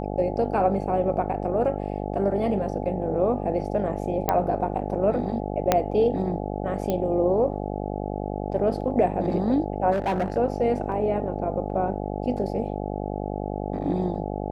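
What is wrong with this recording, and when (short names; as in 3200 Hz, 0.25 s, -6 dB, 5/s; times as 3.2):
buzz 50 Hz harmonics 17 -30 dBFS
4.29 pop -8 dBFS
5.72 pop -4 dBFS
6.9 pop -13 dBFS
9.91–10.38 clipped -20.5 dBFS
10.92 gap 2.4 ms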